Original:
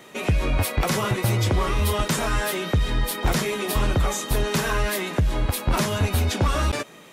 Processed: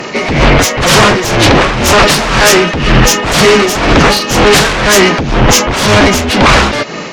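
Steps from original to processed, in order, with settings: knee-point frequency compression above 1.7 kHz 1.5:1; sine folder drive 14 dB, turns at -10 dBFS; tremolo 2 Hz, depth 65%; trim +8.5 dB

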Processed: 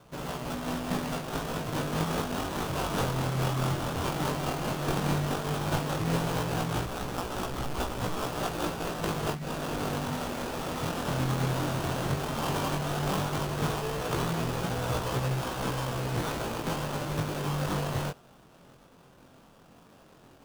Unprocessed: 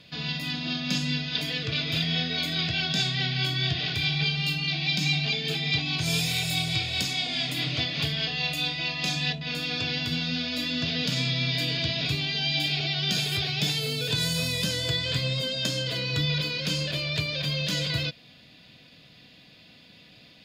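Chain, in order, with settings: 6.86–8.25 s: LPC vocoder at 8 kHz pitch kept; sample-rate reducer 2.1 kHz, jitter 20%; chorus 0.13 Hz, delay 16 ms, depth 7.2 ms

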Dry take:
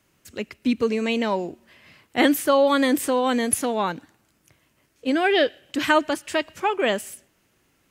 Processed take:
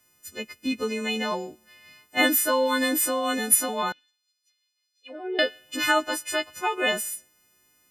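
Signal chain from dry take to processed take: partials quantised in pitch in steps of 3 st; dynamic bell 1.4 kHz, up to +3 dB, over -31 dBFS, Q 0.83; 3.92–5.39 s: auto-wah 410–4400 Hz, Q 4.4, down, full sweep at -16 dBFS; trim -6 dB

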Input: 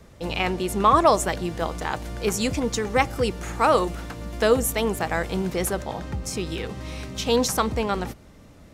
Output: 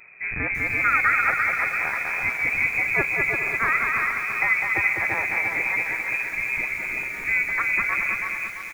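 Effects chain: dynamic bell 770 Hz, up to -7 dB, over -32 dBFS, Q 0.77; bouncing-ball echo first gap 200 ms, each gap 0.65×, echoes 5; careless resampling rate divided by 8×, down filtered, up zero stuff; frequency inversion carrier 2.5 kHz; bit-crushed delay 339 ms, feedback 55%, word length 7-bit, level -6 dB

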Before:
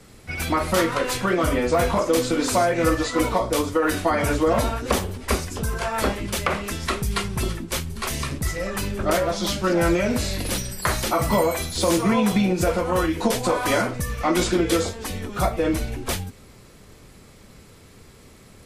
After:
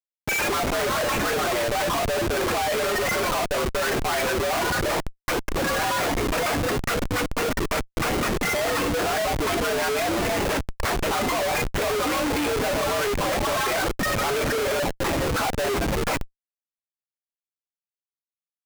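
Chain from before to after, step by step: median filter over 9 samples; reverb removal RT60 0.73 s; high-pass 350 Hz 12 dB/octave; resonant high shelf 3.7 kHz -13 dB, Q 1.5; in parallel at +2 dB: compression 16:1, threshold -29 dBFS, peak gain reduction 14 dB; on the sum: frequency shift +90 Hz; loudest bins only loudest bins 64; Schmitt trigger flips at -32.5 dBFS

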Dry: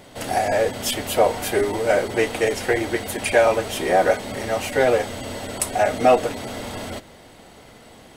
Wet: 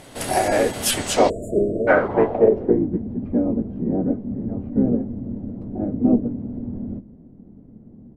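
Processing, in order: harmony voices -12 st -8 dB, -3 st -8 dB, +4 st -17 dB; low-pass sweep 11 kHz -> 230 Hz, 0.89–2.91 s; spectral selection erased 1.29–1.87 s, 690–6800 Hz

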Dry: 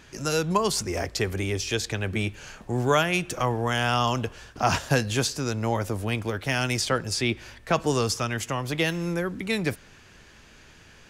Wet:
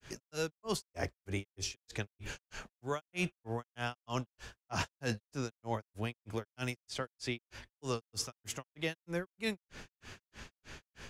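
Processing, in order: reverse; compression 6:1, threshold -35 dBFS, peak gain reduction 17.5 dB; reverse; granulator 203 ms, grains 3.2 per s, pitch spread up and down by 0 st; trim +4 dB

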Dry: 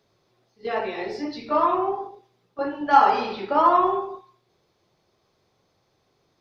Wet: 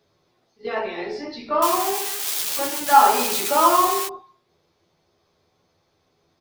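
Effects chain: 1.62–4.08 s: zero-crossing glitches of -14 dBFS; doubling 12 ms -4 dB

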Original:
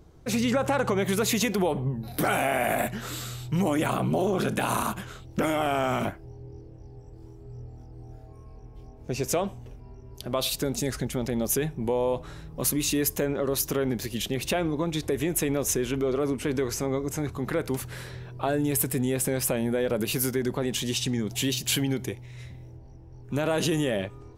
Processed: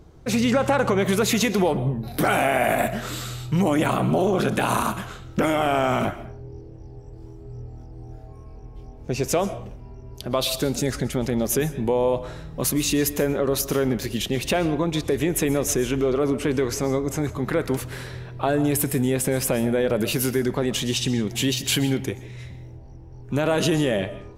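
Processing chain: treble shelf 7.8 kHz -5 dB; algorithmic reverb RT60 0.5 s, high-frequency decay 0.7×, pre-delay 90 ms, DRR 14 dB; trim +4.5 dB

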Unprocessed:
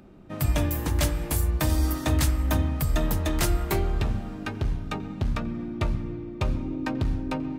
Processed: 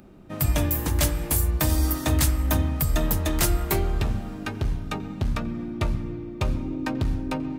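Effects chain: treble shelf 7.7 kHz +7.5 dB; trim +1 dB

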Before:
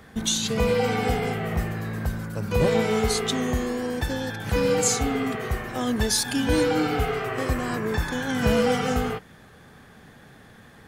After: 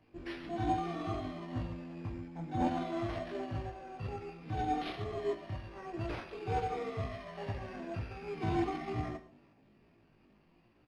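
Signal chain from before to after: peaking EQ 4 kHz -10.5 dB 0.28 oct; band-stop 810 Hz, Q 12; de-hum 124.9 Hz, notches 2; chorus voices 4, 1.2 Hz, delay 29 ms, depth 3 ms; pitch shift +7.5 st; doubling 20 ms -12 dB; on a send at -8 dB: reverberation, pre-delay 3 ms; on the sum: careless resampling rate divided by 6×, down none, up hold; tape spacing loss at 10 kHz 26 dB; upward expansion 1.5:1, over -35 dBFS; trim -6 dB

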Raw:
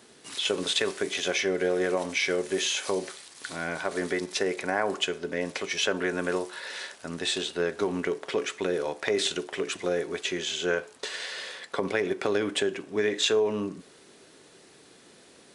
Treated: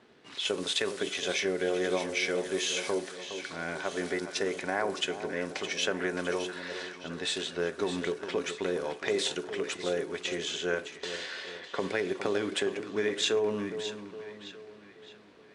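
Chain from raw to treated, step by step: two-band feedback delay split 1.2 kHz, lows 413 ms, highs 614 ms, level -10 dB; level-controlled noise filter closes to 2.7 kHz, open at -24 dBFS; trim -3.5 dB

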